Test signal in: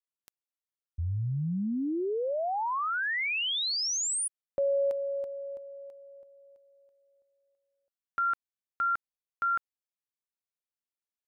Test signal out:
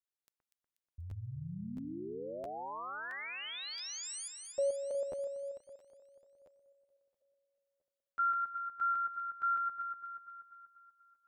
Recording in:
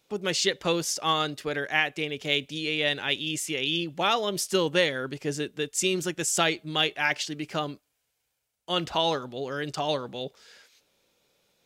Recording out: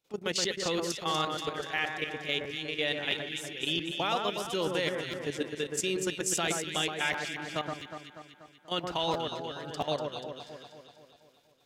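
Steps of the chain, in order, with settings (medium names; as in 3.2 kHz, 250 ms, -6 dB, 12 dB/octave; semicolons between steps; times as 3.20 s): level held to a coarse grid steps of 14 dB; echo whose repeats swap between lows and highs 121 ms, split 1.8 kHz, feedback 74%, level -3.5 dB; crackling interface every 0.67 s, samples 512, repeat, from 0.42 s; trim -2 dB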